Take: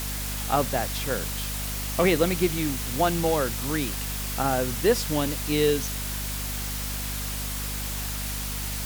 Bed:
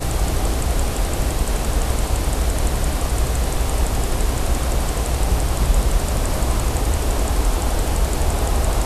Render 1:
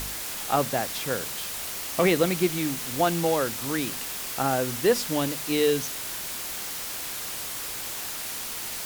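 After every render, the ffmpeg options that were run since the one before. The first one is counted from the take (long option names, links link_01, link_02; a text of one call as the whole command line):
ffmpeg -i in.wav -af "bandreject=frequency=50:width_type=h:width=4,bandreject=frequency=100:width_type=h:width=4,bandreject=frequency=150:width_type=h:width=4,bandreject=frequency=200:width_type=h:width=4,bandreject=frequency=250:width_type=h:width=4" out.wav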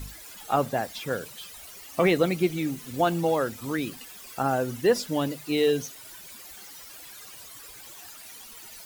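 ffmpeg -i in.wav -af "afftdn=noise_reduction=15:noise_floor=-34" out.wav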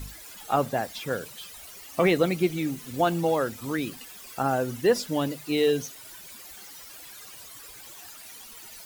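ffmpeg -i in.wav -af anull out.wav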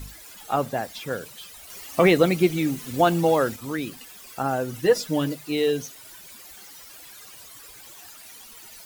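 ffmpeg -i in.wav -filter_complex "[0:a]asettb=1/sr,asplit=3[link_01][link_02][link_03];[link_01]atrim=end=4.734[link_04];[link_02]atrim=start=4.73:end=5.35,asetpts=PTS-STARTPTS,afade=type=in:duration=0.004:curve=qsin,afade=type=out:start_time=0.616:duration=0.004:curve=qsin,aecho=1:1:6.4:0.65,atrim=end_sample=27342[link_05];[link_03]atrim=start=5.346[link_06];[link_04][link_05]acrossfade=duration=0.004:curve1=hsin:curve2=qsin[link_07];[link_07][link_06]acrossfade=duration=0.004:curve1=qsin:curve2=hsin,asplit=3[link_08][link_09][link_10];[link_08]atrim=end=1.702[link_11];[link_09]atrim=start=1.698:end=3.562,asetpts=PTS-STARTPTS,volume=4.5dB[link_12];[link_10]atrim=start=3.558[link_13];[link_11][link_12]acrossfade=duration=0.004:curve1=hsin:curve2=hsin[link_14];[link_14][link_13]acrossfade=duration=0.004:curve1=hsin:curve2=hsin" out.wav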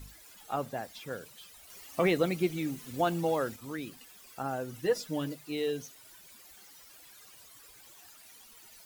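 ffmpeg -i in.wav -af "volume=-9.5dB" out.wav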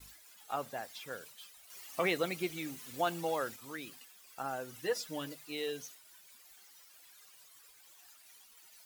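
ffmpeg -i in.wav -af "agate=range=-33dB:threshold=-49dB:ratio=3:detection=peak,lowshelf=frequency=470:gain=-12" out.wav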